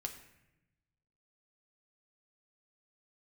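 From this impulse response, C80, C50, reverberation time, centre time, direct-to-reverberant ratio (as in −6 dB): 11.5 dB, 9.5 dB, 0.90 s, 16 ms, 3.5 dB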